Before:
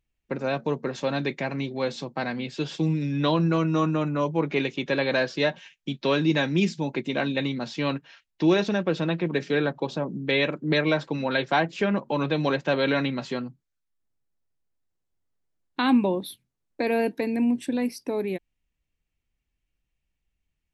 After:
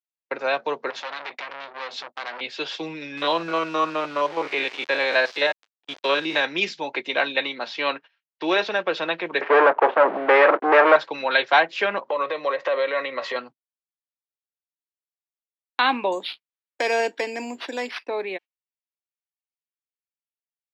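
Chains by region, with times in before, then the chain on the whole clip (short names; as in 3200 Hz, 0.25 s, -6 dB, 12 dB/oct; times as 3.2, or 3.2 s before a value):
0.9–2.41 notches 50/100/150/200/250 Hz + compressor 5:1, threshold -29 dBFS + core saturation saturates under 2700 Hz
3.17–6.45 stepped spectrum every 50 ms + sample gate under -38.5 dBFS
7.41–8.79 HPF 140 Hz + air absorption 51 m
9.41–10.96 EQ curve 940 Hz 0 dB, 3000 Hz -4 dB, 4500 Hz -29 dB + sample leveller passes 5 + Butterworth band-pass 700 Hz, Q 0.55
12.08–13.36 compressor 16:1, threshold -31 dBFS + small resonant body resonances 540/1100/1900 Hz, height 14 dB, ringing for 20 ms
16.12–18.07 high shelf 8800 Hz +3 dB + careless resampling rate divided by 6×, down none, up hold + mismatched tape noise reduction encoder only
whole clip: weighting filter A; gate -43 dBFS, range -27 dB; three-band isolator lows -15 dB, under 380 Hz, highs -24 dB, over 5600 Hz; gain +7 dB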